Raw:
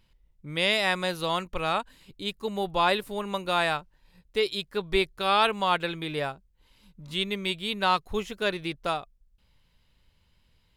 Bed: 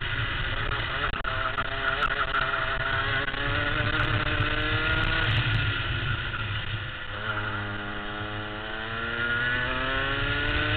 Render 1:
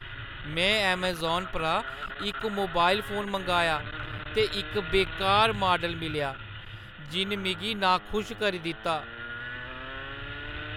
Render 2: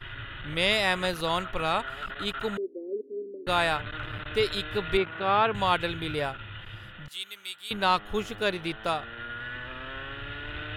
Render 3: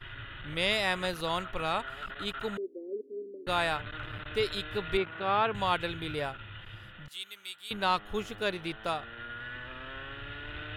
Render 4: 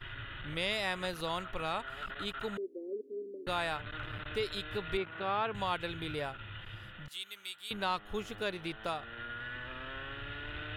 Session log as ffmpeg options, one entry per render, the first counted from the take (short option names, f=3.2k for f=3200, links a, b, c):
-filter_complex "[1:a]volume=-11dB[a];[0:a][a]amix=inputs=2:normalize=0"
-filter_complex "[0:a]asettb=1/sr,asplit=3[a][b][c];[a]atrim=end=2.574[d];[b]atrim=start=2.57:end=3.47,asetpts=PTS-STARTPTS,afade=t=in:d=0.004:c=qsin,afade=t=out:st=0.896:d=0.004:c=qsin,asuperpass=centerf=340:order=12:qfactor=1.4[e];[c]atrim=start=3.466[f];[d][e]acrossfade=d=0.004:c1=hsin:c2=qsin[g];[g][f]acrossfade=d=0.004:c1=qsin:c2=hsin,asettb=1/sr,asplit=3[h][i][j];[h]atrim=end=4.974[k];[i]atrim=start=4.97:end=5.55,asetpts=PTS-STARTPTS,afade=t=in:d=0.004:c=qsin,afade=t=out:st=0.576:d=0.004:c=qsin,highpass=140,lowpass=2.1k[l];[j]atrim=start=5.546[m];[k][l]acrossfade=d=0.004:c1=hsin:c2=qsin[n];[n][m]acrossfade=d=0.004:c1=qsin:c2=hsin,asettb=1/sr,asplit=3[o][p][q];[o]atrim=end=7.084[r];[p]atrim=start=7.08:end=7.71,asetpts=PTS-STARTPTS,afade=t=in:d=0.004:c=qsin,afade=t=out:st=0.626:d=0.004:c=qsin,aderivative[s];[q]atrim=start=7.706[t];[r][s]acrossfade=d=0.004:c1=hsin:c2=qsin[u];[u][t]acrossfade=d=0.004:c1=qsin:c2=hsin"
-af "volume=-4dB"
-af "acompressor=threshold=-39dB:ratio=1.5"